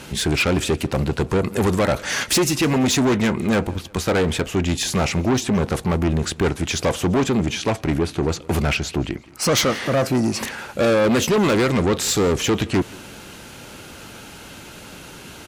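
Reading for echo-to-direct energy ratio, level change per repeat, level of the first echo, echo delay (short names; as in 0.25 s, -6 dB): -22.0 dB, -8.0 dB, -23.0 dB, 0.171 s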